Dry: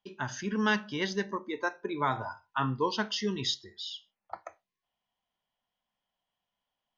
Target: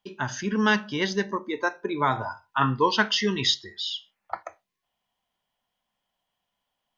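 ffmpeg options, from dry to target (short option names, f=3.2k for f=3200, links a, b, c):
-filter_complex "[0:a]asettb=1/sr,asplit=3[a][b][c];[a]atrim=end=2.614[d];[b]atrim=start=2.61:end=4.43,asetpts=PTS-STARTPTS,afade=t=in:d=0.004:c=qsin,afade=t=out:st=1.816:d=0.004:c=qsin,equalizer=f=1.9k:w=0.8:g=7.5[e];[c]atrim=start=4.426[f];[d][e]acrossfade=d=0.004:c1=hsin:c2=qsin[g];[g][f]acrossfade=d=0.004:c1=qsin:c2=hsin,volume=5.5dB"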